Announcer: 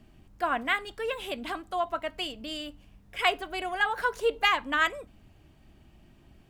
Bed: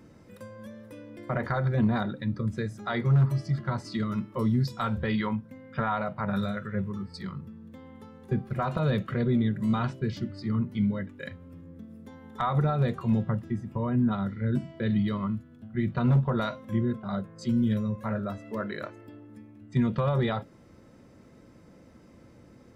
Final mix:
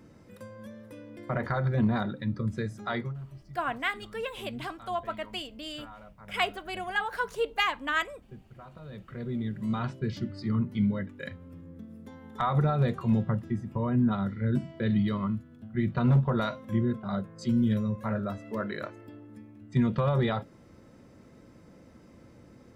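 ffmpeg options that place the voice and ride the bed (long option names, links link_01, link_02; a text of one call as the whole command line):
ffmpeg -i stem1.wav -i stem2.wav -filter_complex "[0:a]adelay=3150,volume=-3dB[link_01];[1:a]volume=18.5dB,afade=type=out:start_time=2.93:duration=0.21:silence=0.11885,afade=type=in:start_time=8.88:duration=1.45:silence=0.105925[link_02];[link_01][link_02]amix=inputs=2:normalize=0" out.wav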